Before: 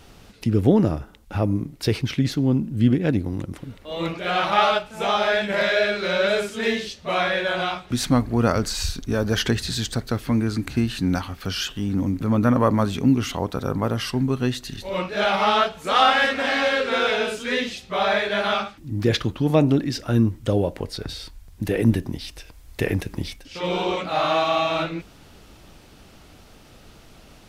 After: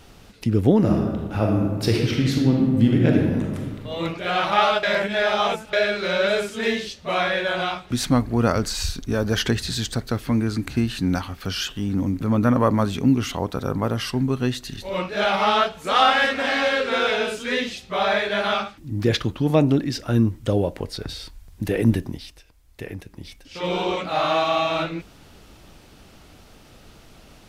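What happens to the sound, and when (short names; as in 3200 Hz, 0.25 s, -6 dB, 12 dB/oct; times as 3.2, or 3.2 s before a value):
0.77–3.81 reverb throw, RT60 1.5 s, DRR -0.5 dB
4.83–5.73 reverse
22–23.63 dip -11 dB, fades 0.43 s linear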